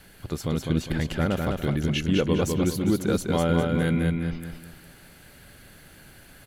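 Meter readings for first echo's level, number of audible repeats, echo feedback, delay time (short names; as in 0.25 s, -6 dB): -3.5 dB, 4, 36%, 0.203 s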